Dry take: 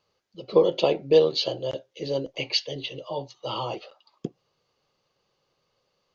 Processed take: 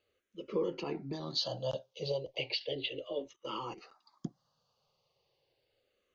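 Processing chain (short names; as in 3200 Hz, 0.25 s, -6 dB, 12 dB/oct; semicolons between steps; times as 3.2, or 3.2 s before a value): 0.71–1.13 LPF 4100 Hz 12 dB/oct; 2.11–2.61 compressor 4:1, threshold -29 dBFS, peak gain reduction 9 dB; limiter -18 dBFS, peak gain reduction 10.5 dB; 3.33–3.78 level quantiser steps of 16 dB; endless phaser -0.34 Hz; gain -2 dB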